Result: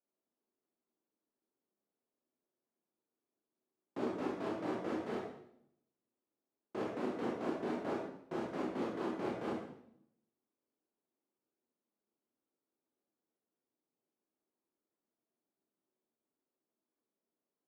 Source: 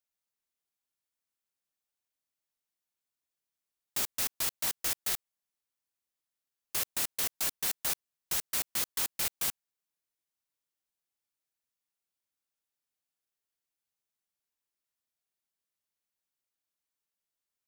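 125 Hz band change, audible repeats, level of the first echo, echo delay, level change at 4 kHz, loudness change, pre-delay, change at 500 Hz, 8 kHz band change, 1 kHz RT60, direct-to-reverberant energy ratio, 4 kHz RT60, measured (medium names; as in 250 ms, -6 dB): +3.0 dB, no echo, no echo, no echo, -19.5 dB, -8.5 dB, 20 ms, +11.5 dB, under -30 dB, 0.65 s, -4.0 dB, 0.65 s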